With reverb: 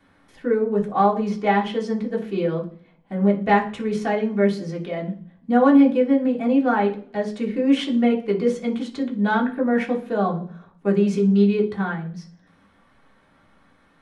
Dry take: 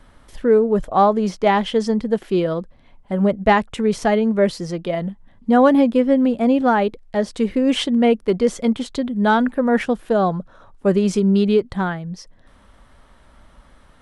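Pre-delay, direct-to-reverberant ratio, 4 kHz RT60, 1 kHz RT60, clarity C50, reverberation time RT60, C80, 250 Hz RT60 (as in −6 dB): 3 ms, −3.0 dB, 0.55 s, 0.40 s, 12.0 dB, 0.50 s, 17.0 dB, 0.75 s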